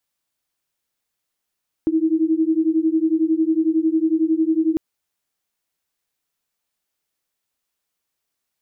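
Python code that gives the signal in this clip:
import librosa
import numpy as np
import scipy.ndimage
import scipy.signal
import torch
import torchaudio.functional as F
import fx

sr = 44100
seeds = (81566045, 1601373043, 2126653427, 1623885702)

y = fx.two_tone_beats(sr, length_s=2.9, hz=315.0, beat_hz=11.0, level_db=-18.5)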